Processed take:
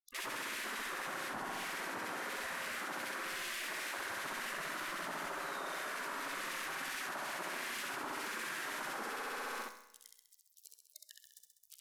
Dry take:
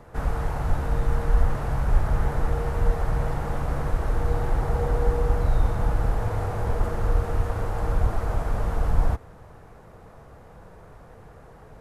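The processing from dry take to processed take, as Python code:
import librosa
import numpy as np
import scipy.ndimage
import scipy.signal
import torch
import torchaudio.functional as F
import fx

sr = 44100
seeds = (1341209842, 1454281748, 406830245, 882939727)

y = fx.octave_divider(x, sr, octaves=2, level_db=-2.0, at=(5.28, 7.78))
y = np.sign(y) * np.maximum(np.abs(y) - 10.0 ** (-38.5 / 20.0), 0.0)
y = scipy.signal.sosfilt(scipy.signal.butter(2, 43.0, 'highpass', fs=sr, output='sos'), y)
y = fx.spec_gate(y, sr, threshold_db=-25, keep='weak')
y = fx.echo_feedback(y, sr, ms=66, feedback_pct=59, wet_db=-3.5)
y = fx.rev_schroeder(y, sr, rt60_s=0.83, comb_ms=32, drr_db=14.0)
y = fx.env_flatten(y, sr, amount_pct=100)
y = y * librosa.db_to_amplitude(-7.0)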